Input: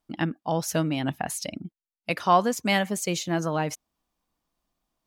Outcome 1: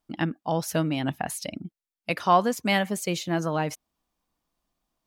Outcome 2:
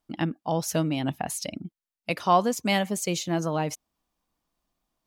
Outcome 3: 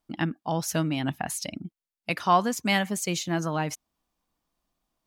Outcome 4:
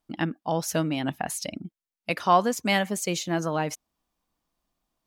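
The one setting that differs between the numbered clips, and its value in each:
dynamic bell, frequency: 6.6 kHz, 1.6 kHz, 510 Hz, 110 Hz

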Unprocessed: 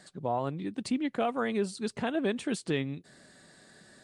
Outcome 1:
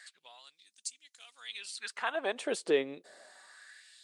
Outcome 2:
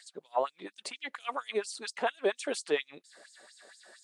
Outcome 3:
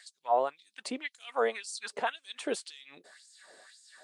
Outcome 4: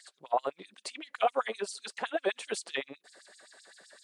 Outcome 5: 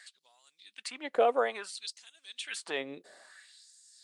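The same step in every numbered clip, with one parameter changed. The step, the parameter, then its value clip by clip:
LFO high-pass, rate: 0.27 Hz, 4.3 Hz, 1.9 Hz, 7.8 Hz, 0.59 Hz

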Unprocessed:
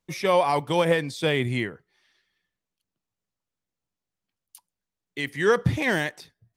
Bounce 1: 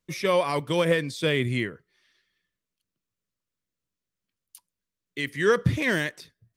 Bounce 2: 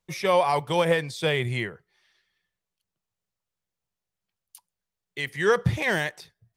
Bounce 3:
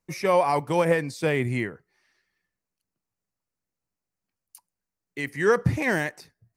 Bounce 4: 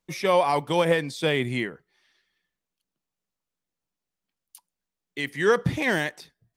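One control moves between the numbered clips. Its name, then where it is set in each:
peaking EQ, frequency: 800 Hz, 270 Hz, 3.4 kHz, 100 Hz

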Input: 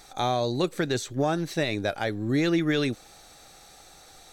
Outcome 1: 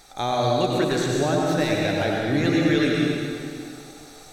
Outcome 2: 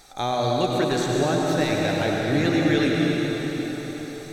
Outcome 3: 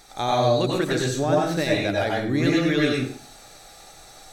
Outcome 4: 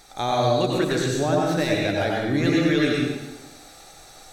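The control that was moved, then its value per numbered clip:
plate-style reverb, RT60: 2.4 s, 5.1 s, 0.5 s, 1.1 s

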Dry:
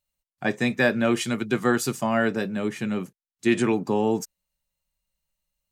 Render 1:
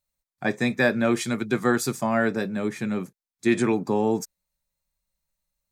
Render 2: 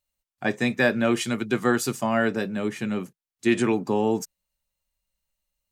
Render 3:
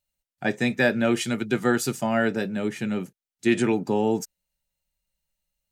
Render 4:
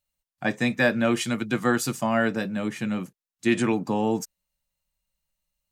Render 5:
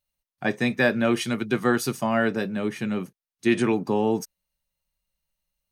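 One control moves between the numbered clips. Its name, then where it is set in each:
band-stop, frequency: 2.9 kHz, 160 Hz, 1.1 kHz, 400 Hz, 7.4 kHz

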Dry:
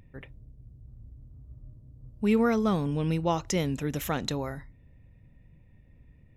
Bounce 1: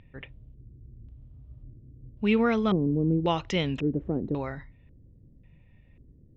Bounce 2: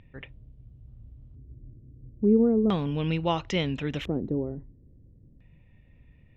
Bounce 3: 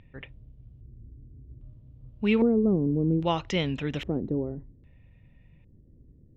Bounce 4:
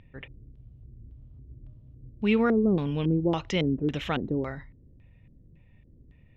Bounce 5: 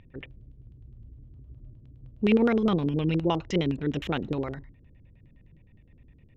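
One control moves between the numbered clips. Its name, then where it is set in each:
LFO low-pass, rate: 0.92 Hz, 0.37 Hz, 0.62 Hz, 1.8 Hz, 9.7 Hz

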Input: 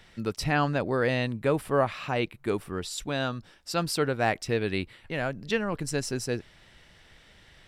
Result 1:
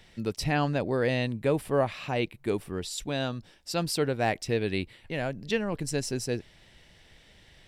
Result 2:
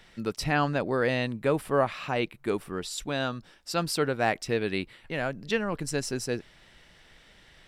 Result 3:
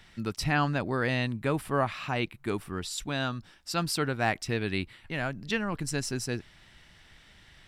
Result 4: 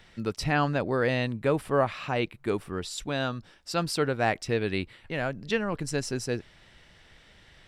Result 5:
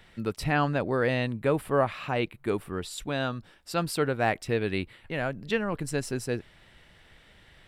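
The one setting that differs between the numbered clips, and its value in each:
peaking EQ, frequency: 1.3 kHz, 89 Hz, 500 Hz, 15 kHz, 5.7 kHz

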